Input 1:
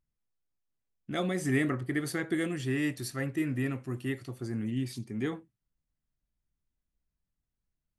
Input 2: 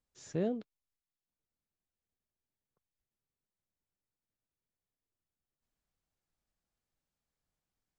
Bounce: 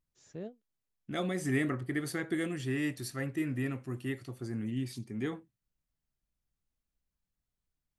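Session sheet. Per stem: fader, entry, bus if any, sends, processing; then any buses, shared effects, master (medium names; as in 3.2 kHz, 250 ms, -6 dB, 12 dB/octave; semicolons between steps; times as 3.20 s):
-2.5 dB, 0.00 s, no send, none
-9.0 dB, 0.00 s, no send, endings held to a fixed fall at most 300 dB/s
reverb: none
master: none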